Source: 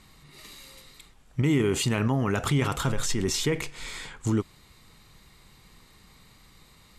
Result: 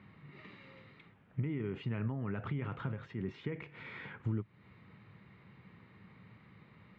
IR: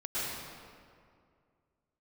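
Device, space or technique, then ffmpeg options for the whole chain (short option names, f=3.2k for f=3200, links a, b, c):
bass amplifier: -af "acompressor=threshold=-37dB:ratio=4,highpass=f=88:w=0.5412,highpass=f=88:w=1.3066,equalizer=f=110:t=q:w=4:g=7,equalizer=f=190:t=q:w=4:g=6,equalizer=f=760:t=q:w=4:g=-4,equalizer=f=1.1k:t=q:w=4:g=-3,lowpass=f=2.4k:w=0.5412,lowpass=f=2.4k:w=1.3066,volume=-1.5dB"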